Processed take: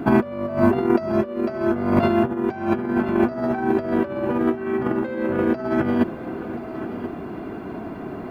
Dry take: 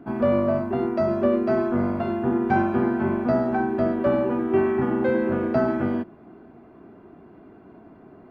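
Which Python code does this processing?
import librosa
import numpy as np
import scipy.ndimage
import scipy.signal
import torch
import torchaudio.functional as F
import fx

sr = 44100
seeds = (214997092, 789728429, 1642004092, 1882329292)

p1 = fx.high_shelf(x, sr, hz=2500.0, db=7.5)
p2 = fx.over_compress(p1, sr, threshold_db=-28.0, ratio=-0.5)
p3 = p2 + fx.echo_single(p2, sr, ms=1032, db=-13.0, dry=0)
y = p3 * 10.0 ** (8.0 / 20.0)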